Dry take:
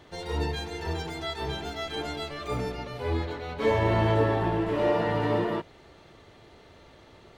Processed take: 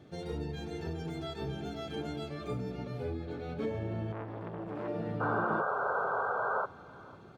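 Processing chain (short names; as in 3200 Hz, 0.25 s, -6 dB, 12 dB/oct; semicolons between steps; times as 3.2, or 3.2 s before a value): bell 160 Hz +14.5 dB 2.6 oct; compressor 10:1, threshold -22 dBFS, peak gain reduction 12.5 dB; notch comb 990 Hz; 5.2–6.66 painted sound noise 390–1600 Hz -23 dBFS; feedback echo 0.5 s, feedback 41%, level -21.5 dB; 4.12–4.88 core saturation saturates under 810 Hz; gain -9 dB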